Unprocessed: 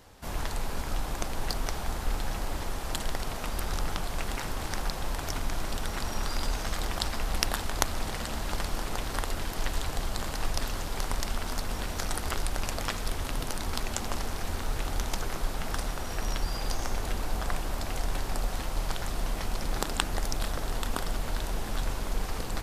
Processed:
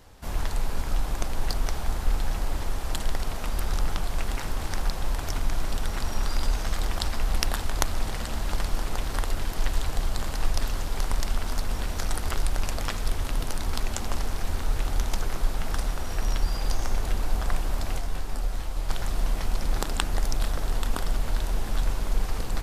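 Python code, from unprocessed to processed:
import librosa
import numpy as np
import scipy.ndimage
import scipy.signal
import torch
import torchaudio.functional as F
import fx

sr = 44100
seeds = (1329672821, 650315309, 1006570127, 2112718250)

y = fx.low_shelf(x, sr, hz=78.0, db=7.5)
y = fx.detune_double(y, sr, cents=fx.line((17.98, 12.0), (18.88, 25.0)), at=(17.98, 18.88), fade=0.02)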